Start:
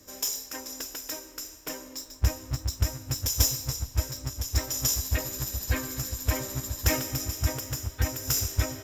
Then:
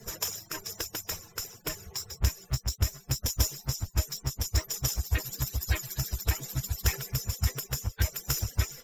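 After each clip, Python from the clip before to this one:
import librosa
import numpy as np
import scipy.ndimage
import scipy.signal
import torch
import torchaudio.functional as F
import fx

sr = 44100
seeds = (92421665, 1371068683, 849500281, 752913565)

y = fx.hpss_only(x, sr, part='percussive')
y = fx.band_squash(y, sr, depth_pct=70)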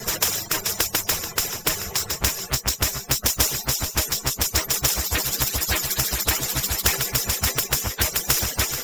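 y = fx.vibrato(x, sr, rate_hz=0.69, depth_cents=7.7)
y = fx.echo_feedback(y, sr, ms=434, feedback_pct=28, wet_db=-17.5)
y = fx.spectral_comp(y, sr, ratio=2.0)
y = y * 10.0 ** (8.5 / 20.0)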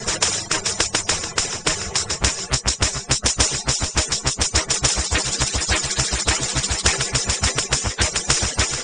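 y = fx.brickwall_lowpass(x, sr, high_hz=9400.0)
y = y * 10.0 ** (4.0 / 20.0)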